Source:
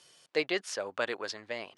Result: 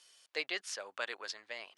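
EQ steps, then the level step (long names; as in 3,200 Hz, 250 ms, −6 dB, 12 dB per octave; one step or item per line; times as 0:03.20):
high-pass filter 1,400 Hz 6 dB per octave
−2.0 dB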